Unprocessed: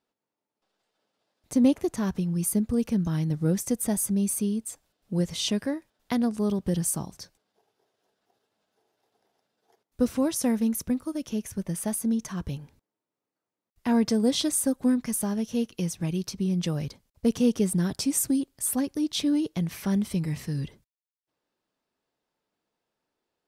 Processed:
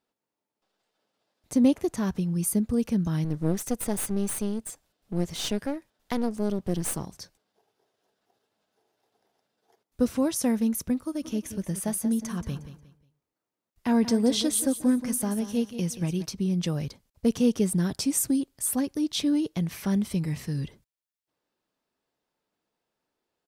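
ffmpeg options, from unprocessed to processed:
-filter_complex "[0:a]asettb=1/sr,asplit=3[a][b][c];[a]atrim=end=3.244[d];[b]atrim=start=3.24:end=7.1,asetpts=PTS-STARTPTS,afade=t=in:d=0.004:c=qsin,afade=t=out:st=3.856:d=0.004:c=qsin,aeval=exprs='clip(val(0),-1,0.015)':c=same[e];[c]atrim=start=7.096[f];[d][e]acrossfade=d=0.004:c1=hsin:c2=qsin[g];[g][f]acrossfade=d=0.004:c1=qsin:c2=hsin,asplit=3[h][i][j];[h]afade=t=out:st=11.2:d=0.02[k];[i]aecho=1:1:179|358|537:0.251|0.0728|0.0211,afade=t=in:st=11.2:d=0.02,afade=t=out:st=16.24:d=0.02[l];[j]afade=t=in:st=16.24:d=0.02[m];[k][l][m]amix=inputs=3:normalize=0"

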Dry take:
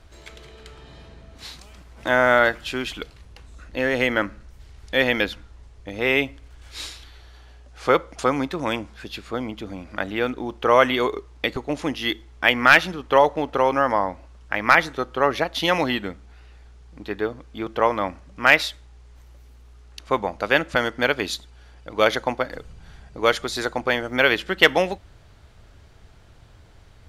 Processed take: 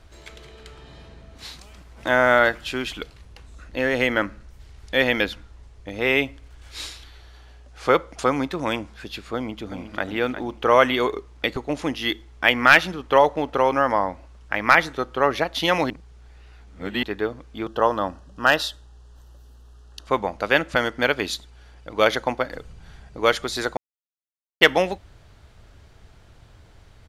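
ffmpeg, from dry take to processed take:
-filter_complex "[0:a]asplit=2[a][b];[b]afade=t=in:st=9.35:d=0.01,afade=t=out:st=10.07:d=0.01,aecho=0:1:360|720|1080|1440|1800:0.334965|0.150734|0.0678305|0.0305237|0.0137357[c];[a][c]amix=inputs=2:normalize=0,asettb=1/sr,asplit=3[d][e][f];[d]atrim=end=17.674[g];[e]atrim=start=17.67:end=20.07,asetpts=PTS-STARTPTS,afade=t=in:d=0.004:c=qsin,afade=t=out:st=2.396:d=0.004:c=qsin,asuperstop=centerf=2200:order=4:qfactor=2.5[h];[f]atrim=start=20.066[i];[g][h]acrossfade=d=0.004:c1=hsin:c2=qsin[j];[j][i]acrossfade=d=0.004:c1=qsin:c2=hsin,asplit=5[k][l][m][n][o];[k]atrim=end=15.902[p];[l]atrim=start=15.898:end=17.032,asetpts=PTS-STARTPTS,areverse[q];[m]atrim=start=17.028:end=23.77,asetpts=PTS-STARTPTS,afade=t=out:st=6.738:d=0.004:c=hsin[r];[n]atrim=start=23.77:end=24.61,asetpts=PTS-STARTPTS,volume=0[s];[o]atrim=start=24.61,asetpts=PTS-STARTPTS,afade=t=in:d=0.004:c=hsin[t];[p][q]acrossfade=d=0.004:c1=hsin:c2=hsin[u];[r][s][t]concat=n=3:v=0:a=1[v];[u][v]acrossfade=d=0.004:c1=hsin:c2=hsin"

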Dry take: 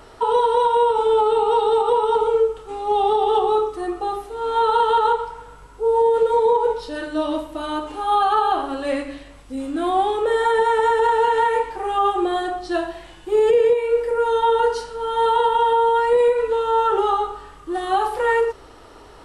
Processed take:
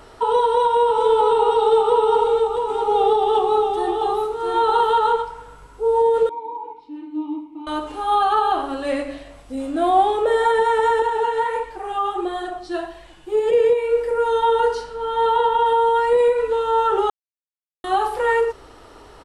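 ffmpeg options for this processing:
-filter_complex "[0:a]asplit=3[a][b][c];[a]afade=t=out:st=0.7:d=0.02[d];[b]aecho=1:1:662:0.562,afade=t=in:st=0.7:d=0.02,afade=t=out:st=5.21:d=0.02[e];[c]afade=t=in:st=5.21:d=0.02[f];[d][e][f]amix=inputs=3:normalize=0,asettb=1/sr,asplit=3[g][h][i];[g]atrim=end=6.294[j];[h]atrim=start=6.29:end=7.67,asetpts=PTS-STARTPTS,afade=t=in:d=0.004:c=qsin,afade=t=out:st=1.376:d=0.004:c=qsin,asplit=3[k][l][m];[k]bandpass=f=300:t=q:w=8,volume=0dB[n];[l]bandpass=f=870:t=q:w=8,volume=-6dB[o];[m]bandpass=f=2.24k:t=q:w=8,volume=-9dB[p];[n][o][p]amix=inputs=3:normalize=0[q];[i]atrim=start=7.666[r];[j][q]acrossfade=d=0.004:c1=hsin:c2=qsin[s];[s][r]acrossfade=d=0.004:c1=qsin:c2=hsin,asettb=1/sr,asplit=3[t][u][v];[t]atrim=end=8.994[w];[u]atrim=start=8.99:end=10.52,asetpts=PTS-STARTPTS,afade=t=in:d=0.004:c=qsin,afade=t=out:st=1.526:d=0.004:c=qsin,equalizer=f=650:w=3.8:g=10[x];[v]atrim=start=10.516[y];[w][x]acrossfade=d=0.004:c1=hsin:c2=qsin[z];[z][y]acrossfade=d=0.004:c1=qsin:c2=hsin,asettb=1/sr,asplit=3[aa][ab][ac];[aa]atrim=end=11.024[ad];[ab]atrim=start=11.02:end=13.52,asetpts=PTS-STARTPTS,afade=t=in:d=0.004:c=qsin,afade=t=out:st=2.496:d=0.004:c=qsin,flanger=delay=1.6:depth=7.6:regen=45:speed=1.5:shape=sinusoidal[ae];[ac]atrim=start=13.516[af];[ad][ae]acrossfade=d=0.004:c1=hsin:c2=qsin[ag];[ag][af]acrossfade=d=0.004:c1=qsin:c2=hsin,asettb=1/sr,asplit=3[ah][ai][aj];[ah]atrim=end=14.754[ak];[ai]atrim=start=14.75:end=15.66,asetpts=PTS-STARTPTS,afade=t=in:d=0.004:c=qsin,afade=t=out:st=0.906:d=0.004:c=qsin,highshelf=f=7.6k:g=-12[al];[aj]atrim=start=15.656[am];[ak][al]acrossfade=d=0.004:c1=hsin:c2=qsin[an];[an][am]acrossfade=d=0.004:c1=qsin:c2=hsin,asplit=3[ao][ap][aq];[ao]atrim=end=17.1,asetpts=PTS-STARTPTS,afade=t=out:st=17.096:d=0.004:c=hsin[ar];[ap]atrim=start=17.1:end=17.84,asetpts=PTS-STARTPTS,volume=0[as];[aq]atrim=start=17.84,asetpts=PTS-STARTPTS,afade=t=in:d=0.004:c=hsin[at];[ar][as][at]concat=n=3:v=0:a=1"

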